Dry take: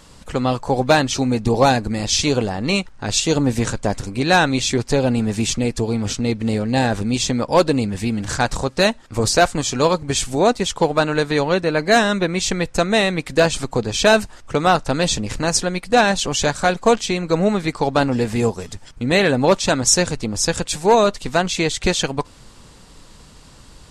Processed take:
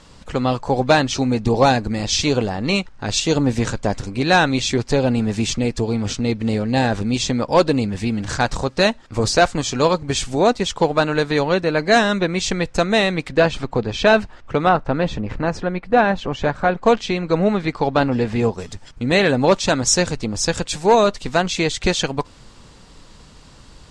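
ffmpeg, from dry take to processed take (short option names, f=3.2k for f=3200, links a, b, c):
-af "asetnsamples=n=441:p=0,asendcmd='13.29 lowpass f 3300;14.69 lowpass f 1900;16.83 lowpass f 4000;18.58 lowpass f 7200',lowpass=6.6k"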